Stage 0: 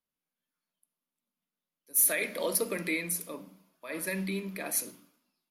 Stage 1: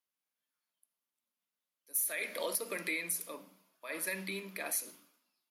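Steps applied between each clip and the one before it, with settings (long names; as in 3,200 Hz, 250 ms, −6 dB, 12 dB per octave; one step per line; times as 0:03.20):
high-pass filter 660 Hz 6 dB per octave
downward compressor 6 to 1, threshold −31 dBFS, peak gain reduction 10.5 dB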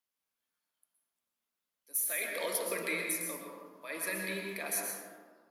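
dense smooth reverb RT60 1.5 s, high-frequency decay 0.3×, pre-delay 105 ms, DRR 0.5 dB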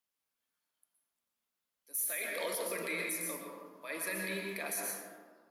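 brickwall limiter −26.5 dBFS, peak gain reduction 7 dB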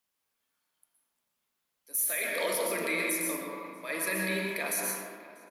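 slap from a distant wall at 110 metres, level −17 dB
spring reverb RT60 1.2 s, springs 37 ms, chirp 75 ms, DRR 5.5 dB
level +5.5 dB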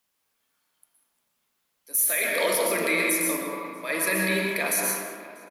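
single-tap delay 192 ms −17.5 dB
level +6.5 dB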